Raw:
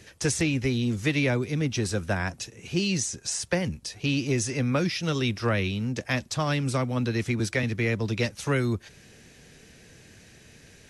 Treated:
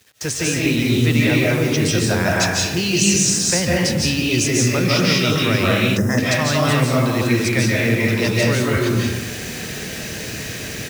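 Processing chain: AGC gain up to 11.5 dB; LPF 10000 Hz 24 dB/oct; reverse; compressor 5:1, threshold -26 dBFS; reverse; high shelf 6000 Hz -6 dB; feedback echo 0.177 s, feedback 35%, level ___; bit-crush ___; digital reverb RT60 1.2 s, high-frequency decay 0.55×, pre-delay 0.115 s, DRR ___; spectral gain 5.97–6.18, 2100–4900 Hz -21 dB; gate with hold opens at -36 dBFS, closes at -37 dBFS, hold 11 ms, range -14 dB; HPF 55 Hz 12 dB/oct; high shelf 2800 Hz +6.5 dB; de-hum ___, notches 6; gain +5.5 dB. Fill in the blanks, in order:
-19 dB, 8-bit, -4.5 dB, 135.9 Hz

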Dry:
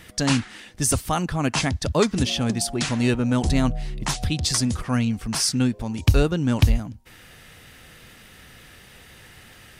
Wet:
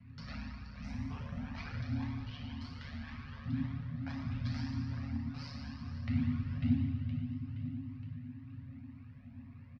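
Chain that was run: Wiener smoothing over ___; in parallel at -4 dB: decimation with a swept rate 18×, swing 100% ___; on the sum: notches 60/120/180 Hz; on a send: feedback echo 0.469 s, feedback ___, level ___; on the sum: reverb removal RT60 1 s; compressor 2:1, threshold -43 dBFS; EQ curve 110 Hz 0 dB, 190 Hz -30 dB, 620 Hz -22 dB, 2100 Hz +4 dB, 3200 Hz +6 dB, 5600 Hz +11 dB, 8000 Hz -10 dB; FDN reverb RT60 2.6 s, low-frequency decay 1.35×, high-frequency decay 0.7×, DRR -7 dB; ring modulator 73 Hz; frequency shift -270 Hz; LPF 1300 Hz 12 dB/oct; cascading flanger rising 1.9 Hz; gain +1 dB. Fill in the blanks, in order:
25 samples, 0.39 Hz, 44%, -16 dB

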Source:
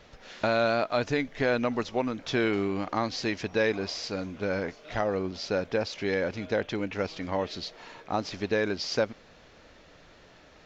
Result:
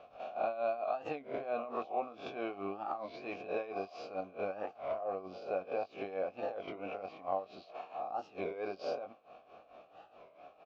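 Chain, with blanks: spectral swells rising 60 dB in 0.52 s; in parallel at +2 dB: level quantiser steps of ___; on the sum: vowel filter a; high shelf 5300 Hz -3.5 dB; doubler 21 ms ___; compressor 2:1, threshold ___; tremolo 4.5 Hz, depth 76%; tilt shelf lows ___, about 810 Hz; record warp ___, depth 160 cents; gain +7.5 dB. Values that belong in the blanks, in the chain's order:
16 dB, -8 dB, -46 dBFS, +4 dB, 33 1/3 rpm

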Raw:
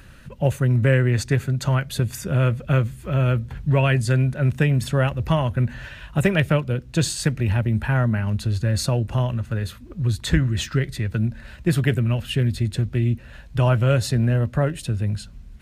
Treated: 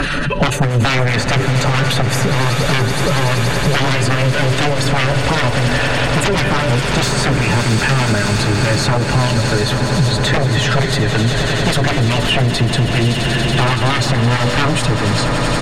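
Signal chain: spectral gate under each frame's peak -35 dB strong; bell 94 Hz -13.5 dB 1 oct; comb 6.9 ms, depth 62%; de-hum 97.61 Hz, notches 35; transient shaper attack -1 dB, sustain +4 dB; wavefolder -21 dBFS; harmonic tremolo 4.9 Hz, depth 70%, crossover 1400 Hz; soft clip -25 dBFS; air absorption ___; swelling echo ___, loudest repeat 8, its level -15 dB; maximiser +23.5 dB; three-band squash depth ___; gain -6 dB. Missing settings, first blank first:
53 m, 94 ms, 100%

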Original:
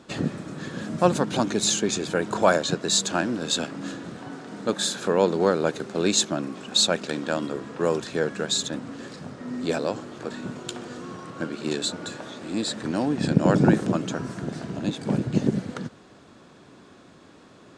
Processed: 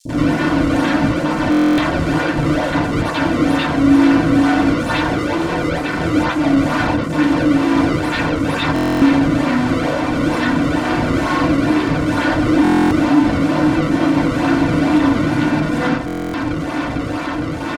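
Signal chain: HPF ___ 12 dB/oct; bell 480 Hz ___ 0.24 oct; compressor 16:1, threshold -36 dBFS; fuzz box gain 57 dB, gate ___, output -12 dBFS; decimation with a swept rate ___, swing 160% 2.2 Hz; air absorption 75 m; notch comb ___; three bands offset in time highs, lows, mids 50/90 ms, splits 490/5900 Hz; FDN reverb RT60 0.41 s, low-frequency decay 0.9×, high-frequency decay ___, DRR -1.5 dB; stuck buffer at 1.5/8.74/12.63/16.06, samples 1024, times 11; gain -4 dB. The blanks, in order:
320 Hz, -6 dB, -55 dBFS, 30×, 420 Hz, 0.4×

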